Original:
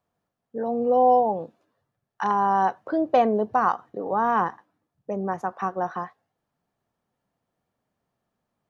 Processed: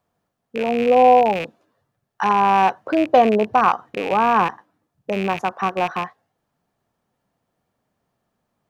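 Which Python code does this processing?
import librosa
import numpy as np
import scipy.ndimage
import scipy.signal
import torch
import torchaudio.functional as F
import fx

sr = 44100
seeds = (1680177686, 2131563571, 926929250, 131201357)

y = fx.rattle_buzz(x, sr, strikes_db=-42.0, level_db=-23.0)
y = y * 10.0 ** (5.5 / 20.0)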